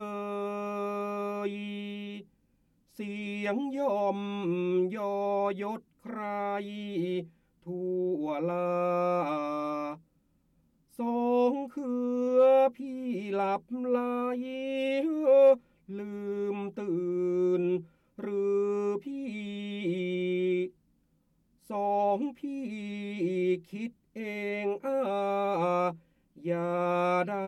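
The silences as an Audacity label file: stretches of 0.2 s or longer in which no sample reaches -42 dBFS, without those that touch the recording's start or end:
2.210000	2.990000	silence
5.790000	6.050000	silence
7.250000	7.670000	silence
9.950000	10.990000	silence
15.570000	15.890000	silence
17.820000	18.190000	silence
20.680000	21.700000	silence
23.890000	24.160000	silence
25.950000	26.380000	silence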